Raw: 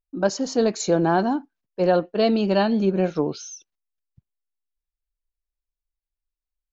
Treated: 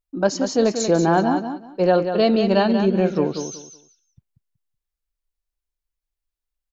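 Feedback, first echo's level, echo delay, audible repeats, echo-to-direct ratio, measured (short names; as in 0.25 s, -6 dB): 22%, -8.0 dB, 0.187 s, 3, -8.0 dB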